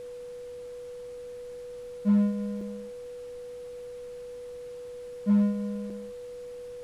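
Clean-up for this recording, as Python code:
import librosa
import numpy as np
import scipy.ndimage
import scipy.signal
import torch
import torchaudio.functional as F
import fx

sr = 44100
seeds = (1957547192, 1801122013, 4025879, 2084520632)

y = fx.fix_declip(x, sr, threshold_db=-17.0)
y = fx.notch(y, sr, hz=490.0, q=30.0)
y = fx.fix_interpolate(y, sr, at_s=(2.61, 5.9), length_ms=3.9)
y = fx.noise_reduce(y, sr, print_start_s=0.17, print_end_s=0.67, reduce_db=30.0)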